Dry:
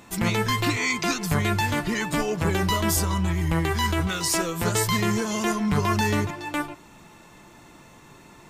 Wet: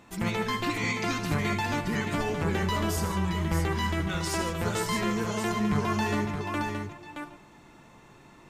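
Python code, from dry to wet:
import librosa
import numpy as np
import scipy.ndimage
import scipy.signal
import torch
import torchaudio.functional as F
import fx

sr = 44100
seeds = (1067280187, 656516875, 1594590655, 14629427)

y = fx.high_shelf(x, sr, hz=5700.0, db=-9.0)
y = fx.echo_multitap(y, sr, ms=(77, 150, 622), db=(-10.5, -11.0, -6.0))
y = F.gain(torch.from_numpy(y), -5.0).numpy()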